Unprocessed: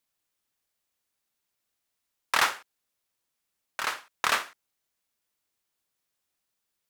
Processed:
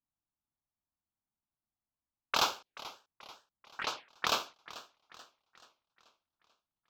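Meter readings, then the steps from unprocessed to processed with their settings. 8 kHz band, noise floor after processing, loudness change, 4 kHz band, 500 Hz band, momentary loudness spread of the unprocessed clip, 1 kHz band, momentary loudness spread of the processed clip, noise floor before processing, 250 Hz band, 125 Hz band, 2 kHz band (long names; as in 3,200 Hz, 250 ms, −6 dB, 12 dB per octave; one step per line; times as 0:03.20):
−5.5 dB, below −85 dBFS, −6.5 dB, −1.5 dB, −1.5 dB, 18 LU, −5.0 dB, 23 LU, −82 dBFS, −0.5 dB, 0.0 dB, −10.0 dB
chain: low-pass that shuts in the quiet parts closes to 640 Hz, open at −24.5 dBFS
phaser swept by the level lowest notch 480 Hz, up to 1,900 Hz, full sweep at −28 dBFS
feedback echo with a swinging delay time 435 ms, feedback 48%, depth 120 cents, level −17 dB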